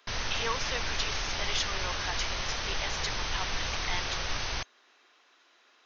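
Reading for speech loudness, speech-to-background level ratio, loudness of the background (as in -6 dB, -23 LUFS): -36.5 LUFS, -4.0 dB, -32.5 LUFS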